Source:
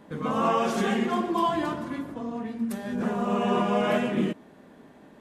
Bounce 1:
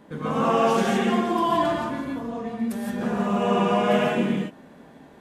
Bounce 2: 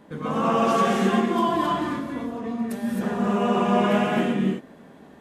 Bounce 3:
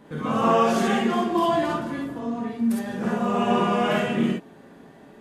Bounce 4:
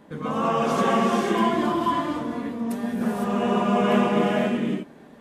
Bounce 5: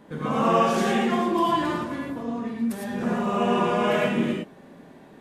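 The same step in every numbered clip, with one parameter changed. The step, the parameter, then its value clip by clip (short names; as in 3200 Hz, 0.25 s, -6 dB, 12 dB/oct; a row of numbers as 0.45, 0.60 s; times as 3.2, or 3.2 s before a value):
non-linear reverb, gate: 190, 290, 80, 530, 130 ms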